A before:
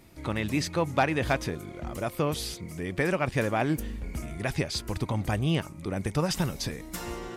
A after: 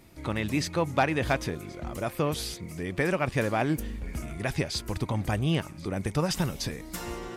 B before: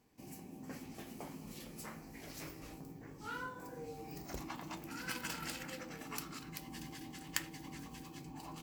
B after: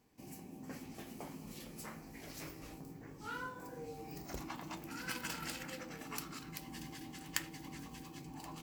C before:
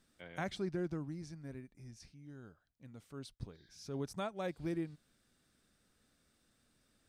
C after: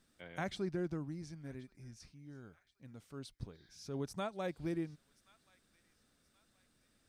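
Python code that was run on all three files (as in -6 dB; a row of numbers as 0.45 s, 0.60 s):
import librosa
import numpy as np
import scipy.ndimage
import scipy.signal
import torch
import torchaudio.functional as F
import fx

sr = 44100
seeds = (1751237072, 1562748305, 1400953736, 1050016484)

y = fx.echo_wet_highpass(x, sr, ms=1077, feedback_pct=40, hz=1500.0, wet_db=-21.0)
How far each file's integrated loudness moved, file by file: 0.0 LU, 0.0 LU, 0.0 LU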